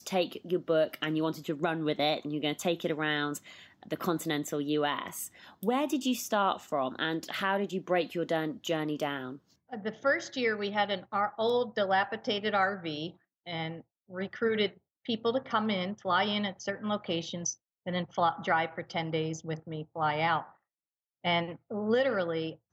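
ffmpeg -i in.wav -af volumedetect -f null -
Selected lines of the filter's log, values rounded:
mean_volume: -31.7 dB
max_volume: -16.2 dB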